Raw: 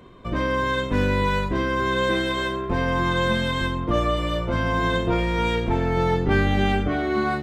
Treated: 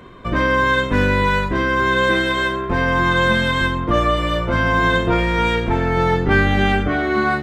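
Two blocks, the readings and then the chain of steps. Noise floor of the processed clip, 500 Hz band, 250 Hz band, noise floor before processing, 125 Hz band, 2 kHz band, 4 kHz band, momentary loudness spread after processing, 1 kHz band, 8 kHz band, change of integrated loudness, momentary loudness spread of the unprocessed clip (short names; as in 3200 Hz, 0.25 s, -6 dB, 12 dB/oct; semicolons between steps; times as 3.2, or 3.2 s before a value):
-25 dBFS, +4.0 dB, +4.0 dB, -29 dBFS, +3.5 dB, +9.0 dB, +5.0 dB, 4 LU, +6.0 dB, +4.0 dB, +5.5 dB, 4 LU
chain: bell 1600 Hz +5.5 dB 1.1 oct; vocal rider within 3 dB 2 s; gain +3.5 dB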